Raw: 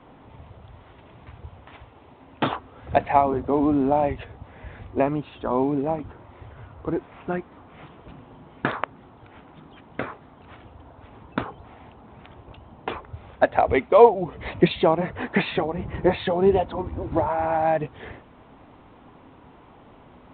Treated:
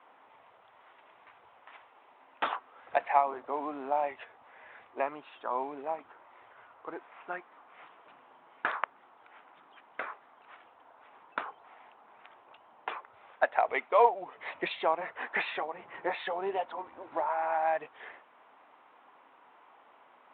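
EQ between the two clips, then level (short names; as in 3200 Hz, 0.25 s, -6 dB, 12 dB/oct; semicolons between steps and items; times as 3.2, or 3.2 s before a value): HPF 960 Hz 12 dB/oct; air absorption 380 m; 0.0 dB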